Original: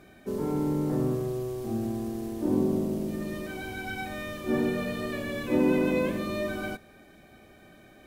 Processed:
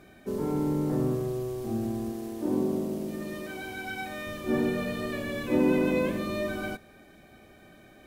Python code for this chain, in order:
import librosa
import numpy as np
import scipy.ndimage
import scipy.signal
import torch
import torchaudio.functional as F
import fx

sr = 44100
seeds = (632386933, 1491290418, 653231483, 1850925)

y = fx.low_shelf(x, sr, hz=130.0, db=-11.0, at=(2.12, 4.27))